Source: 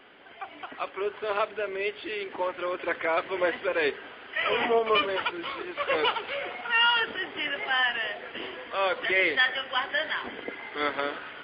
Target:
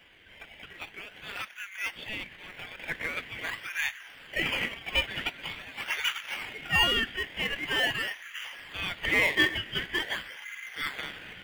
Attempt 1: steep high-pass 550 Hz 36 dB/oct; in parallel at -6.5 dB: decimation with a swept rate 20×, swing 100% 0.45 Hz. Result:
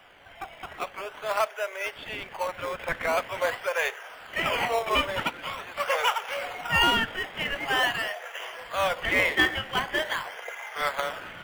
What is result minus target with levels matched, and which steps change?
500 Hz band +8.0 dB
change: steep high-pass 1700 Hz 36 dB/oct

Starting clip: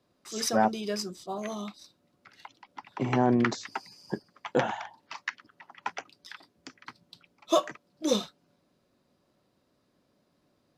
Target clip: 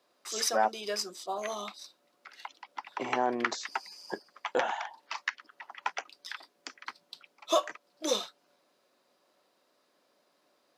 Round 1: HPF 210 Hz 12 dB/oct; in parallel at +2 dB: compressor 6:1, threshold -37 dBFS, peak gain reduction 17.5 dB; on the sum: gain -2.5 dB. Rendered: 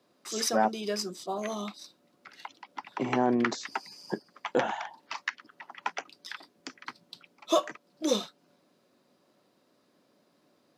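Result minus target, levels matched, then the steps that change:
250 Hz band +7.5 dB
change: HPF 520 Hz 12 dB/oct

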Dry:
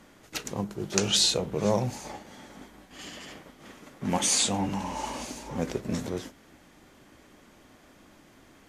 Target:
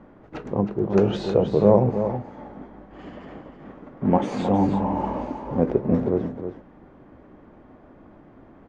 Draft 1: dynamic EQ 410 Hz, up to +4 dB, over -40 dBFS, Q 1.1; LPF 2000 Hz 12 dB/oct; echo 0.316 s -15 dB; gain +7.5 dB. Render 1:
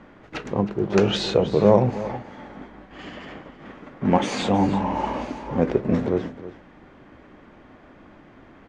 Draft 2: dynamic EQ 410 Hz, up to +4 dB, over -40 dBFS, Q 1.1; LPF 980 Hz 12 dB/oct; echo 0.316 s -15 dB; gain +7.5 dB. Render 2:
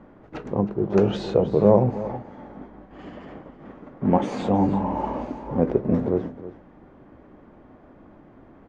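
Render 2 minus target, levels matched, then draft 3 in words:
echo-to-direct -6 dB
dynamic EQ 410 Hz, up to +4 dB, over -40 dBFS, Q 1.1; LPF 980 Hz 12 dB/oct; echo 0.316 s -9 dB; gain +7.5 dB

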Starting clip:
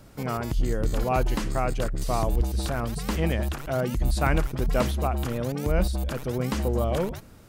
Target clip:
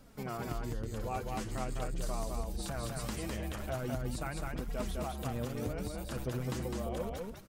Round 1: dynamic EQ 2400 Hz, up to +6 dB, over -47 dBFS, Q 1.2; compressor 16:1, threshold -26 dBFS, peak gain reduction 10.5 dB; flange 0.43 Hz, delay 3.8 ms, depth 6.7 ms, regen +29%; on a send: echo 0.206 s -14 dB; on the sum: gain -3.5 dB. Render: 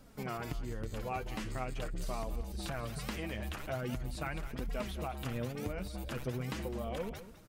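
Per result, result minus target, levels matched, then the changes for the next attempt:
echo-to-direct -11 dB; 8000 Hz band -3.5 dB
change: echo 0.206 s -3 dB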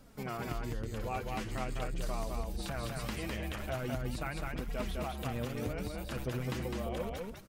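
8000 Hz band -3.5 dB
change: dynamic EQ 8100 Hz, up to +6 dB, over -47 dBFS, Q 1.2

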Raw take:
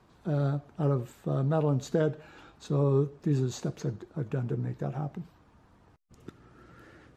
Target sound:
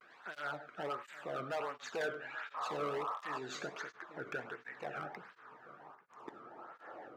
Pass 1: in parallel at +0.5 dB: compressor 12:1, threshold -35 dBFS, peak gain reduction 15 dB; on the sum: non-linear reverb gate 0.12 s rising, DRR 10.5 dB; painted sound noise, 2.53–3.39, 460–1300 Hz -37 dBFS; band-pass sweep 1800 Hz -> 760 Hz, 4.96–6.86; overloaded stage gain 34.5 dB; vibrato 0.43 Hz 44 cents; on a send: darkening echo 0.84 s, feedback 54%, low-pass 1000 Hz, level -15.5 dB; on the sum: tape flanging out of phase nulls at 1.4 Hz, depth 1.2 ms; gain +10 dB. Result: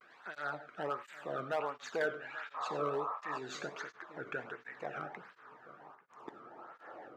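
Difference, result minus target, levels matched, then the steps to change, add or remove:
overloaded stage: distortion -9 dB
change: overloaded stage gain 41.5 dB

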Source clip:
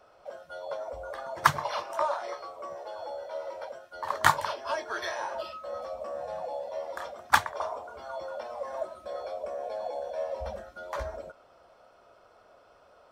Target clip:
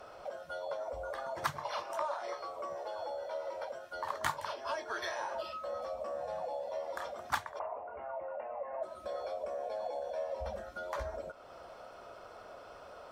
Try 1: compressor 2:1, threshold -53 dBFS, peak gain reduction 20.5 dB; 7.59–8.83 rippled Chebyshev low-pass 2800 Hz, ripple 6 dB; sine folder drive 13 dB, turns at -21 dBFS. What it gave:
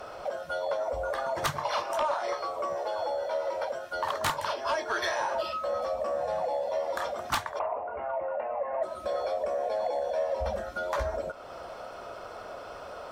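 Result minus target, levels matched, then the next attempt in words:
sine folder: distortion +11 dB
compressor 2:1, threshold -53 dBFS, peak gain reduction 20.5 dB; 7.59–8.83 rippled Chebyshev low-pass 2800 Hz, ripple 6 dB; sine folder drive 4 dB, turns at -21 dBFS

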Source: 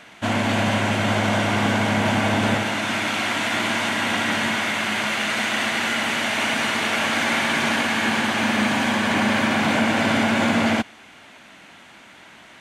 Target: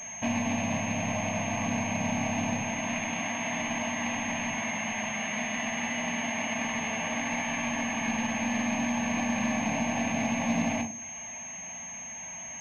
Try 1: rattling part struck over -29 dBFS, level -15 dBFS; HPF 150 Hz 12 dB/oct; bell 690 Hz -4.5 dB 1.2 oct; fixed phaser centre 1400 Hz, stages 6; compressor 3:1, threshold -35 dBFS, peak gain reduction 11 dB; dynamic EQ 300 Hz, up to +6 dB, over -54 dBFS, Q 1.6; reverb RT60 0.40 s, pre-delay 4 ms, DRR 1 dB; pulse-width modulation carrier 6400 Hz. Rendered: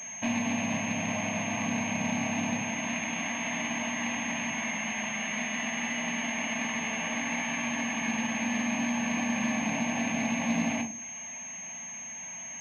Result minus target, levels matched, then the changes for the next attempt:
500 Hz band -3.0 dB; 125 Hz band -2.5 dB
remove: HPF 150 Hz 12 dB/oct; remove: bell 690 Hz -4.5 dB 1.2 oct

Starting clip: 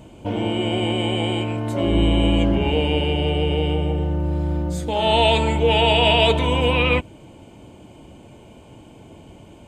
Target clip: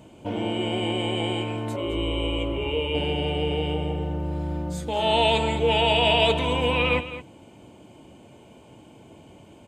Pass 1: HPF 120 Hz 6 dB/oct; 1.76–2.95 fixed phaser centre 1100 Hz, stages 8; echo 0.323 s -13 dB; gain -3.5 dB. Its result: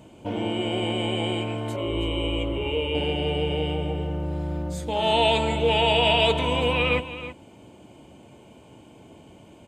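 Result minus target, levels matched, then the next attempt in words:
echo 0.11 s late
HPF 120 Hz 6 dB/oct; 1.76–2.95 fixed phaser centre 1100 Hz, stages 8; echo 0.213 s -13 dB; gain -3.5 dB

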